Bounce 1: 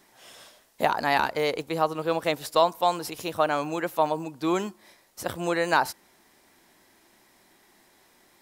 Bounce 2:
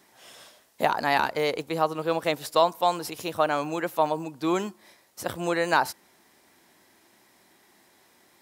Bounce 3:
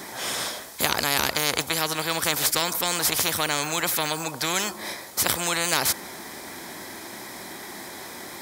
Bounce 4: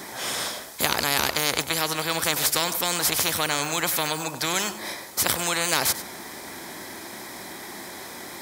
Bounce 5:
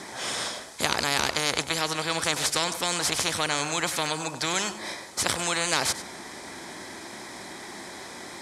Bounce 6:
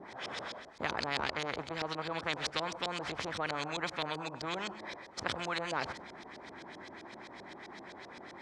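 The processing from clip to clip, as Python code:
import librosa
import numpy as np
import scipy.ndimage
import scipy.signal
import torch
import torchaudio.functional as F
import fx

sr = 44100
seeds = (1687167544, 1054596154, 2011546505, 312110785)

y1 = scipy.signal.sosfilt(scipy.signal.butter(2, 66.0, 'highpass', fs=sr, output='sos'), x)
y2 = fx.notch(y1, sr, hz=2800.0, q=7.0)
y2 = fx.spectral_comp(y2, sr, ratio=4.0)
y2 = y2 * 10.0 ** (6.5 / 20.0)
y3 = y2 + 10.0 ** (-14.0 / 20.0) * np.pad(y2, (int(97 * sr / 1000.0), 0))[:len(y2)]
y4 = scipy.signal.sosfilt(scipy.signal.butter(4, 9500.0, 'lowpass', fs=sr, output='sos'), y3)
y4 = y4 * 10.0 ** (-1.5 / 20.0)
y5 = fx.filter_lfo_lowpass(y4, sr, shape='saw_up', hz=7.7, low_hz=500.0, high_hz=5100.0, q=1.4)
y5 = y5 * 10.0 ** (-8.5 / 20.0)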